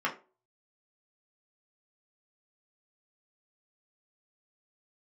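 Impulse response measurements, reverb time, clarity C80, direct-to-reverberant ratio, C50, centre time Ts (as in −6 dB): 0.35 s, 19.5 dB, −4.0 dB, 13.5 dB, 15 ms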